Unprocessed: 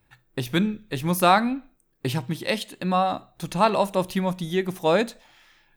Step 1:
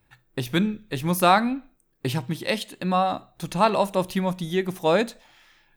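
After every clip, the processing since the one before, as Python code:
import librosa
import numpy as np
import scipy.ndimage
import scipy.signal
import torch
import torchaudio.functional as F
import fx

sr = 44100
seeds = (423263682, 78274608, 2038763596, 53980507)

y = x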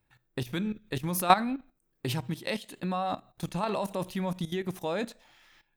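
y = fx.level_steps(x, sr, step_db=15)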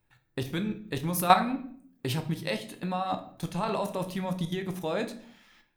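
y = fx.room_shoebox(x, sr, seeds[0], volume_m3=79.0, walls='mixed', distance_m=0.34)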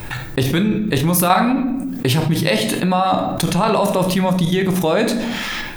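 y = fx.env_flatten(x, sr, amount_pct=70)
y = y * 10.0 ** (3.0 / 20.0)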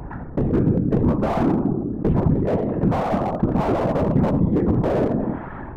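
y = scipy.signal.sosfilt(scipy.signal.butter(4, 1100.0, 'lowpass', fs=sr, output='sos'), x)
y = fx.whisperise(y, sr, seeds[1])
y = fx.slew_limit(y, sr, full_power_hz=72.0)
y = y * 10.0 ** (-1.0 / 20.0)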